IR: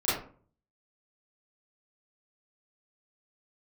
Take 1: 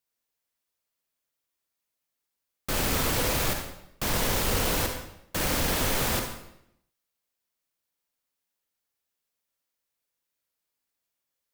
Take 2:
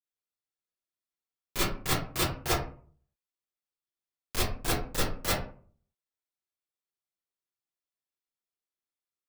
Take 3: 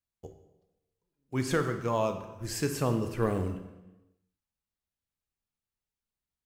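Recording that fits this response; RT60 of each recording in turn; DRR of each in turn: 2; 0.75, 0.45, 1.0 s; 3.5, -12.0, 7.0 dB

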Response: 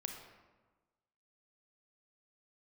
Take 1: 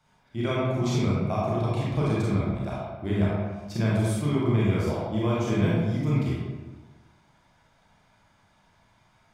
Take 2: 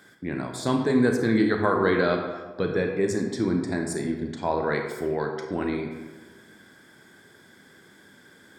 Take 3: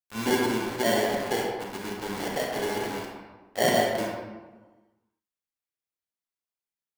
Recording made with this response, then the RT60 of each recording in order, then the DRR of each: 2; 1.3, 1.3, 1.3 s; -7.5, 3.5, -1.5 dB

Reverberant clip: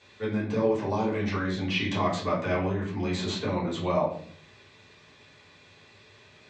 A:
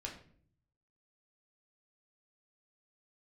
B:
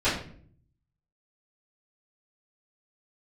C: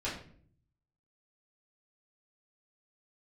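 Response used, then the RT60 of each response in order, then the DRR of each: C; 0.55, 0.55, 0.55 s; -1.0, -17.0, -9.0 dB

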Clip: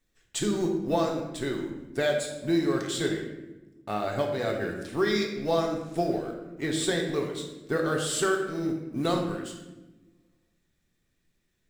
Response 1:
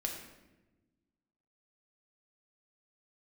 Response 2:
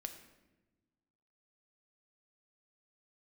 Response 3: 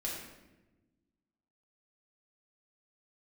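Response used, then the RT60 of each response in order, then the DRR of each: 1; 1.1 s, not exponential, 1.1 s; 1.0, 6.0, -4.5 dB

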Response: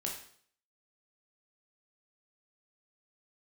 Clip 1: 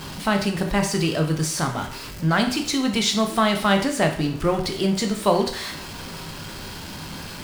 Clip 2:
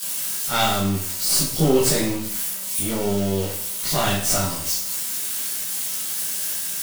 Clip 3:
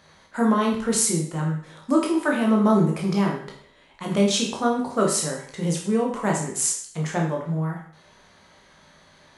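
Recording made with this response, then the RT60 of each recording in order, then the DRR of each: 3; 0.55, 0.55, 0.55 s; 4.0, -10.5, -1.5 dB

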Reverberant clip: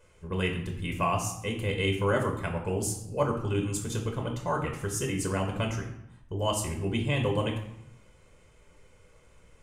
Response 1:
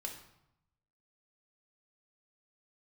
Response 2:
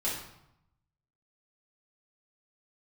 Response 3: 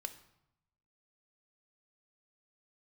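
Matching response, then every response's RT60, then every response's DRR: 1; 0.80, 0.80, 0.80 s; 1.5, -7.0, 8.5 dB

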